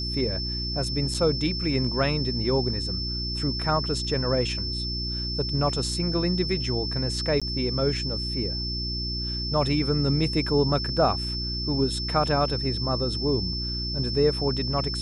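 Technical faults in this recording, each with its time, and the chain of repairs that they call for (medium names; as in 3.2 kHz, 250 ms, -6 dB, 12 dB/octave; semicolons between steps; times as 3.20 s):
hum 60 Hz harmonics 6 -32 dBFS
whine 5.3 kHz -30 dBFS
1.14–1.15 s: dropout 5.2 ms
7.40–7.42 s: dropout 16 ms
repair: de-hum 60 Hz, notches 6; band-stop 5.3 kHz, Q 30; interpolate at 1.14 s, 5.2 ms; interpolate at 7.40 s, 16 ms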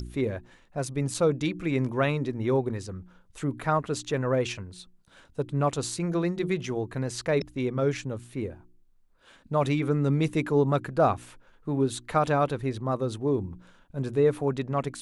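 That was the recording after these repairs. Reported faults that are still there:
nothing left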